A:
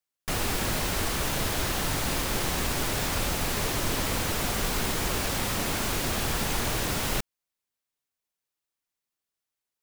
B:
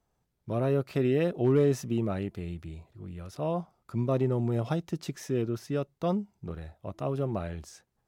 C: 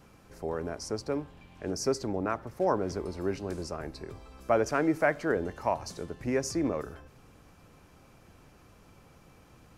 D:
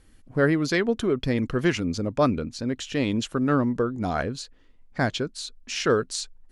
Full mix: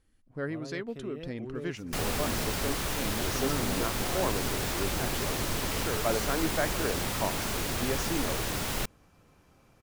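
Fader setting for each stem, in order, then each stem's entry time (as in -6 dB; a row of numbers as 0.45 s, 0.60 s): -3.5 dB, -16.5 dB, -4.5 dB, -13.5 dB; 1.65 s, 0.00 s, 1.55 s, 0.00 s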